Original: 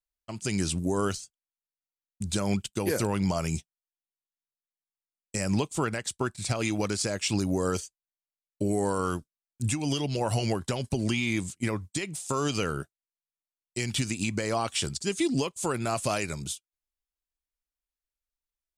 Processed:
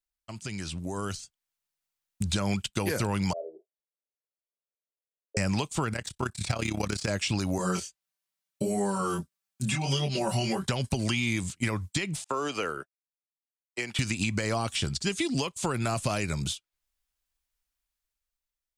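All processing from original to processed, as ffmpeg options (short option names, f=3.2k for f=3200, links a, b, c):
-filter_complex "[0:a]asettb=1/sr,asplit=3[a][b][c];[a]atrim=end=3.334[d];[b]atrim=start=3.33:end=5.37,asetpts=PTS-STARTPTS,afade=t=in:d=0.004:c=qsin,afade=t=out:st=2.036:d=0.004:c=qsin,asuperpass=centerf=490:order=8:qfactor=1.9,asplit=2[e][f];[f]adelay=31,volume=-9dB[g];[e][g]amix=inputs=2:normalize=0,atrim=end_sample=89964[h];[c]atrim=start=5.366[i];[d][h]acrossfade=d=0.004:c1=hsin:c2=qsin[j];[j][i]acrossfade=d=0.004:c1=qsin:c2=hsin,asettb=1/sr,asplit=3[k][l][m];[k]atrim=end=5.934[n];[l]atrim=start=5.93:end=7.08,asetpts=PTS-STARTPTS,afade=t=in:d=0.004:c=qsin,afade=t=out:st=1.146:d=0.004:c=qsin,deesser=0.65,tremolo=f=33:d=0.824[o];[m]atrim=start=7.076[p];[n][o]acrossfade=d=0.004:c1=hsin:c2=qsin[q];[q][p]acrossfade=d=0.004:c1=qsin:c2=hsin,asettb=1/sr,asplit=3[r][s][t];[r]atrim=end=7.584[u];[s]atrim=start=7.58:end=10.67,asetpts=PTS-STARTPTS,afade=t=in:d=0.004:c=qsin,afade=t=out:st=3.086:d=0.004:c=qsin,highpass=61,aecho=1:1:5.2:0.91,atrim=end_sample=136269,flanger=delay=20:depth=4.7:speed=1.6[v];[t]atrim=start=10.666[w];[u][v]acrossfade=d=0.004:c1=hsin:c2=qsin[x];[x][w]acrossfade=d=0.004:c1=qsin:c2=hsin,asettb=1/sr,asplit=3[y][z][aa];[y]atrim=end=12.244[ab];[z]atrim=start=12.24:end=13.99,asetpts=PTS-STARTPTS,afade=t=in:d=0.004:c=qsin,afade=t=out:st=1.746:d=0.004:c=qsin,agate=range=-33dB:threshold=-30dB:ratio=3:release=100:detection=peak,acrossover=split=320 2600:gain=0.0708 1 0.224[ac][ad][ae];[ac][ad][ae]amix=inputs=3:normalize=0[af];[aa]atrim=start=13.986[ag];[ab][af]acrossfade=d=0.004:c1=hsin:c2=qsin[ah];[ah][ag]acrossfade=d=0.004:c1=qsin:c2=hsin,acrossover=split=490|4900[ai][aj][ak];[ai]acompressor=threshold=-34dB:ratio=4[al];[aj]acompressor=threshold=-39dB:ratio=4[am];[ak]acompressor=threshold=-51dB:ratio=4[an];[al][am][an]amix=inputs=3:normalize=0,equalizer=f=380:w=0.79:g=-6,dynaudnorm=f=250:g=9:m=9dB"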